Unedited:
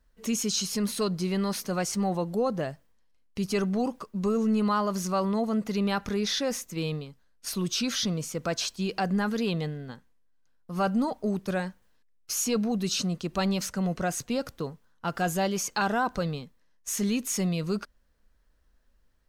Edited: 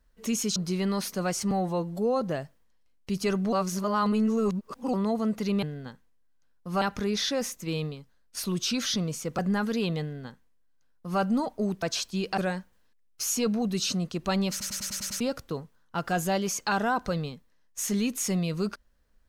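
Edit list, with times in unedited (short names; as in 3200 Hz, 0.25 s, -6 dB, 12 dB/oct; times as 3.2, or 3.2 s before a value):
0.56–1.08 cut
2.03–2.5 stretch 1.5×
3.81–5.22 reverse
8.48–9.03 move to 11.47
9.66–10.85 copy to 5.91
13.6 stutter in place 0.10 s, 7 plays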